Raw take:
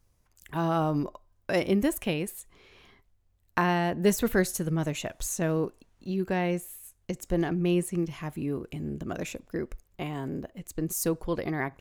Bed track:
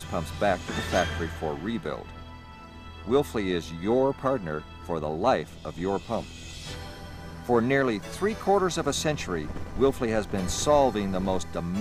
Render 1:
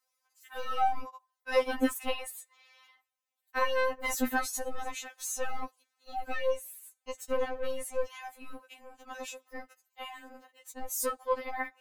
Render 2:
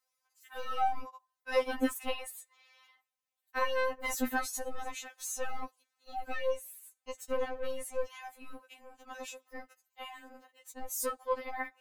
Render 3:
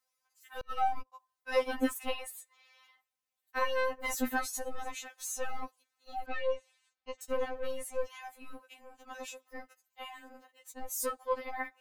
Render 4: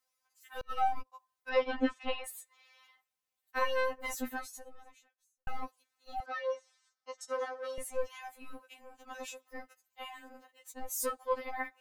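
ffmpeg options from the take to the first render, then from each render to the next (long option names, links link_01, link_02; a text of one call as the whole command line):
ffmpeg -i in.wav -filter_complex "[0:a]acrossover=split=610|4700[link_01][link_02][link_03];[link_01]acrusher=bits=3:mix=0:aa=0.5[link_04];[link_04][link_02][link_03]amix=inputs=3:normalize=0,afftfilt=real='re*3.46*eq(mod(b,12),0)':imag='im*3.46*eq(mod(b,12),0)':win_size=2048:overlap=0.75" out.wav
ffmpeg -i in.wav -af "volume=-2.5dB" out.wav
ffmpeg -i in.wav -filter_complex "[0:a]asettb=1/sr,asplit=3[link_01][link_02][link_03];[link_01]atrim=end=0.614[link_04];[link_02]atrim=start=0.61:end=1.12,asetpts=PTS-STARTPTS,afade=type=in:duration=0.004:curve=qsin,afade=type=out:start_time=0.506:duration=0.004:curve=qsin,agate=range=-33dB:threshold=-34dB:ratio=16:release=100:detection=peak[link_05];[link_03]atrim=start=1.116[link_06];[link_04][link_05]acrossfade=duration=0.004:curve1=hsin:curve2=qsin[link_07];[link_07][link_06]acrossfade=duration=0.004:curve1=qsin:curve2=hsin,asettb=1/sr,asplit=3[link_08][link_09][link_10];[link_08]atrim=end=6.264[link_11];[link_09]atrim=start=6.26:end=7.21,asetpts=PTS-STARTPTS,afade=type=in:duration=0.004:curve=qsin,afade=type=out:start_time=0.946:duration=0.004:curve=qsin,lowpass=frequency=4800:width=0.5412,lowpass=frequency=4800:width=1.3066[link_12];[link_10]atrim=start=7.206[link_13];[link_11][link_12]acrossfade=duration=0.004:curve1=hsin:curve2=qsin[link_14];[link_14][link_13]acrossfade=duration=0.004:curve1=qsin:curve2=hsin" out.wav
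ffmpeg -i in.wav -filter_complex "[0:a]asettb=1/sr,asplit=3[link_01][link_02][link_03];[link_01]atrim=end=1.494[link_04];[link_02]atrim=start=1.49:end=2.24,asetpts=PTS-STARTPTS,afade=type=in:duration=0.004:curve=qsin,afade=type=out:start_time=0.746:duration=0.004:curve=qsin,lowpass=frequency=4500:width=0.5412,lowpass=frequency=4500:width=1.3066[link_05];[link_03]atrim=start=2.236[link_06];[link_04][link_05]acrossfade=duration=0.004:curve1=hsin:curve2=qsin[link_07];[link_07][link_06]acrossfade=duration=0.004:curve1=qsin:curve2=hsin,asettb=1/sr,asplit=3[link_08][link_09][link_10];[link_08]atrim=end=6.204[link_11];[link_09]atrim=start=6.2:end=7.78,asetpts=PTS-STARTPTS,afade=type=in:duration=0.004:curve=qsin,afade=type=out:start_time=1.576:duration=0.004:curve=qsin,highpass=490,equalizer=frequency=1300:width_type=q:width=4:gain=6,equalizer=frequency=2600:width_type=q:width=4:gain=-10,equalizer=frequency=5500:width_type=q:width=4:gain=9,lowpass=frequency=9700:width=0.5412,lowpass=frequency=9700:width=1.3066[link_12];[link_10]atrim=start=7.776[link_13];[link_11][link_12]acrossfade=duration=0.004:curve1=hsin:curve2=qsin[link_14];[link_14][link_13]acrossfade=duration=0.004:curve1=qsin:curve2=hsin,asplit=2[link_15][link_16];[link_15]atrim=end=5.47,asetpts=PTS-STARTPTS,afade=type=out:start_time=3.8:duration=1.67:curve=qua[link_17];[link_16]atrim=start=5.47,asetpts=PTS-STARTPTS,afade=type=in:duration=0.004:curve=hsin[link_18];[link_17][link_18]concat=n=2:v=0:a=1" out.wav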